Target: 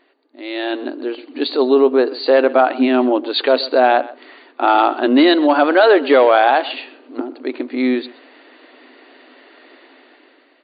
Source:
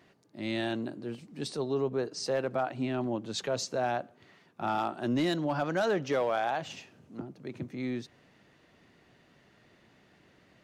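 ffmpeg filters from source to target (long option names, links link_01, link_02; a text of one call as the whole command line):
ffmpeg -i in.wav -filter_complex "[0:a]asplit=2[link_01][link_02];[link_02]adelay=128.3,volume=-19dB,highshelf=frequency=4000:gain=-2.89[link_03];[link_01][link_03]amix=inputs=2:normalize=0,afftfilt=real='re*between(b*sr/4096,240,4700)':imag='im*between(b*sr/4096,240,4700)':win_size=4096:overlap=0.75,dynaudnorm=framelen=200:gausssize=9:maxgain=13.5dB,volume=4.5dB" out.wav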